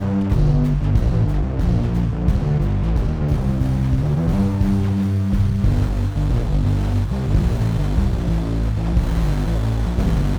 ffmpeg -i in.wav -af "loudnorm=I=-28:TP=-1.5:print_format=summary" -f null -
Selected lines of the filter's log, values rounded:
Input Integrated:    -20.1 LUFS
Input True Peak:      -5.7 dBTP
Input LRA:             1.3 LU
Input Threshold:     -30.1 LUFS